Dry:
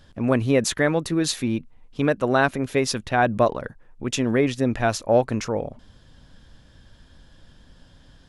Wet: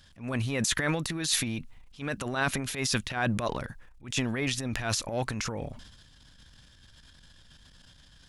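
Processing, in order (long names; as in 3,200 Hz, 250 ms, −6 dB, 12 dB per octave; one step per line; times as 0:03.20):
guitar amp tone stack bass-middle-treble 5-5-5
transient designer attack −11 dB, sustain +9 dB
level +8 dB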